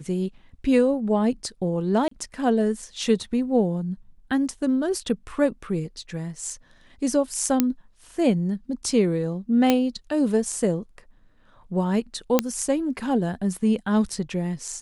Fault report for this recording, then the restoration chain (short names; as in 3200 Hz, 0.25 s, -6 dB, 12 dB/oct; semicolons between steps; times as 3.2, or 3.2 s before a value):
2.08–2.11 gap 34 ms
7.6 pop -5 dBFS
9.7 pop -5 dBFS
12.39 pop -4 dBFS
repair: de-click; interpolate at 2.08, 34 ms